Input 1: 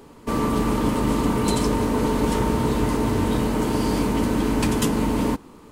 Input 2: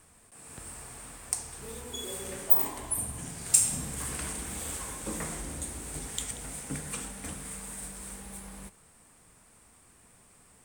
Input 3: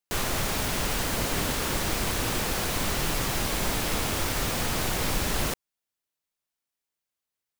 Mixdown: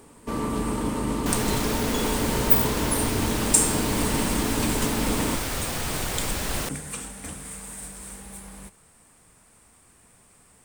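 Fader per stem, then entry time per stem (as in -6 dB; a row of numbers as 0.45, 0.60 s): -5.5, +2.5, -1.5 dB; 0.00, 0.00, 1.15 s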